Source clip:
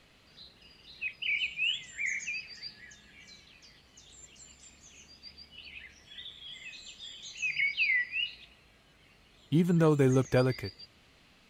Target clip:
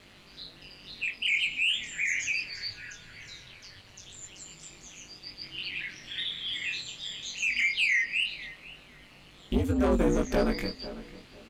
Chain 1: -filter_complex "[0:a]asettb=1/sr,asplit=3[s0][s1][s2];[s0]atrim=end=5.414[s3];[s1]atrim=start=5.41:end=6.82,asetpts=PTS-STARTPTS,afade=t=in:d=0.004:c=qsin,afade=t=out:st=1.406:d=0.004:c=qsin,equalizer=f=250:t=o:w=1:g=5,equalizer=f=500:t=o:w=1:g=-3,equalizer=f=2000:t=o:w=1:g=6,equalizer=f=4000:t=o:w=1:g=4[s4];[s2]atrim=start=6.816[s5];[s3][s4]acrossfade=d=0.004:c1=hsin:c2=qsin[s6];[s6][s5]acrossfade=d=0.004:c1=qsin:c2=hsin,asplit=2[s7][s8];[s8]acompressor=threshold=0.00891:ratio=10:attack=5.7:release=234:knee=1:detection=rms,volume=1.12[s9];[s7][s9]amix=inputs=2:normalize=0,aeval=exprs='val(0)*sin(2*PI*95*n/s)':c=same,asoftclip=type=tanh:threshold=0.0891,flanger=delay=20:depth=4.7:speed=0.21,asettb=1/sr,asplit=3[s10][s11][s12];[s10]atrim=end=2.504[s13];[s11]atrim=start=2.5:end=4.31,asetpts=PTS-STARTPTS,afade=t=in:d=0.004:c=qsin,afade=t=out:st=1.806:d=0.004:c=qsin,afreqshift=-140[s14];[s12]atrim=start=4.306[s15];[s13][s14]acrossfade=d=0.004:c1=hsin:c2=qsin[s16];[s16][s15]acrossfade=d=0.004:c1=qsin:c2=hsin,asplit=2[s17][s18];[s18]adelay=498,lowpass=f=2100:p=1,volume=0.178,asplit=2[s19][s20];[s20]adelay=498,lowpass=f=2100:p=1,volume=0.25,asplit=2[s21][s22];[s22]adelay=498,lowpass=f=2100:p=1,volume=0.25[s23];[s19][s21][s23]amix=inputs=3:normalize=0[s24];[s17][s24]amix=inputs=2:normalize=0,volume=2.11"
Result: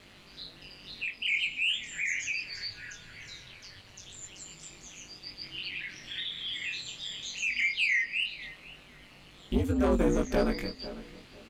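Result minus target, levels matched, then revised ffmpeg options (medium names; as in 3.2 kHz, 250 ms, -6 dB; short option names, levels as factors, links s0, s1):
compression: peak gain reduction +9 dB
-filter_complex "[0:a]asettb=1/sr,asplit=3[s0][s1][s2];[s0]atrim=end=5.414[s3];[s1]atrim=start=5.41:end=6.82,asetpts=PTS-STARTPTS,afade=t=in:d=0.004:c=qsin,afade=t=out:st=1.406:d=0.004:c=qsin,equalizer=f=250:t=o:w=1:g=5,equalizer=f=500:t=o:w=1:g=-3,equalizer=f=2000:t=o:w=1:g=6,equalizer=f=4000:t=o:w=1:g=4[s4];[s2]atrim=start=6.816[s5];[s3][s4]acrossfade=d=0.004:c1=hsin:c2=qsin[s6];[s6][s5]acrossfade=d=0.004:c1=qsin:c2=hsin,asplit=2[s7][s8];[s8]acompressor=threshold=0.0282:ratio=10:attack=5.7:release=234:knee=1:detection=rms,volume=1.12[s9];[s7][s9]amix=inputs=2:normalize=0,aeval=exprs='val(0)*sin(2*PI*95*n/s)':c=same,asoftclip=type=tanh:threshold=0.0891,flanger=delay=20:depth=4.7:speed=0.21,asettb=1/sr,asplit=3[s10][s11][s12];[s10]atrim=end=2.504[s13];[s11]atrim=start=2.5:end=4.31,asetpts=PTS-STARTPTS,afade=t=in:d=0.004:c=qsin,afade=t=out:st=1.806:d=0.004:c=qsin,afreqshift=-140[s14];[s12]atrim=start=4.306[s15];[s13][s14]acrossfade=d=0.004:c1=hsin:c2=qsin[s16];[s16][s15]acrossfade=d=0.004:c1=qsin:c2=hsin,asplit=2[s17][s18];[s18]adelay=498,lowpass=f=2100:p=1,volume=0.178,asplit=2[s19][s20];[s20]adelay=498,lowpass=f=2100:p=1,volume=0.25,asplit=2[s21][s22];[s22]adelay=498,lowpass=f=2100:p=1,volume=0.25[s23];[s19][s21][s23]amix=inputs=3:normalize=0[s24];[s17][s24]amix=inputs=2:normalize=0,volume=2.11"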